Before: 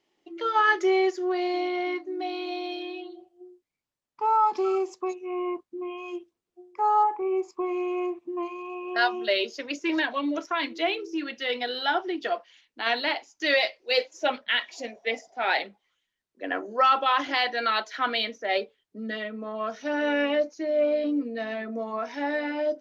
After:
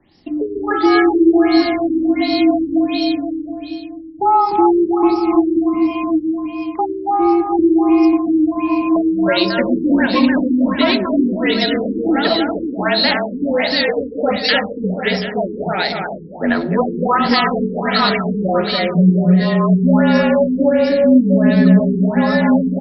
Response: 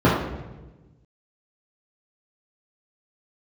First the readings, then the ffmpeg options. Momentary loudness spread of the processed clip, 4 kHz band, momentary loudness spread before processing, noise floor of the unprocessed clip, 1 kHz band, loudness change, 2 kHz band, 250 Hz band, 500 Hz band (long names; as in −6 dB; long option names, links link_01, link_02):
9 LU, +9.5 dB, 12 LU, −84 dBFS, +7.5 dB, +11.5 dB, +6.5 dB, +19.5 dB, +10.5 dB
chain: -filter_complex "[0:a]firequalizer=gain_entry='entry(130,0);entry(190,-8);entry(380,-16)':delay=0.05:min_phase=1,acompressor=threshold=-50dB:ratio=2,afreqshift=-37,aecho=1:1:300|540|732|885.6|1008:0.631|0.398|0.251|0.158|0.1,aexciter=amount=5:drive=8.4:freq=4400,asplit=2[link_01][link_02];[1:a]atrim=start_sample=2205,asetrate=28665,aresample=44100[link_03];[link_02][link_03]afir=irnorm=-1:irlink=0,volume=-34dB[link_04];[link_01][link_04]amix=inputs=2:normalize=0,alimiter=level_in=32dB:limit=-1dB:release=50:level=0:latency=1,afftfilt=real='re*lt(b*sr/1024,460*pow(5700/460,0.5+0.5*sin(2*PI*1.4*pts/sr)))':imag='im*lt(b*sr/1024,460*pow(5700/460,0.5+0.5*sin(2*PI*1.4*pts/sr)))':win_size=1024:overlap=0.75,volume=-1dB"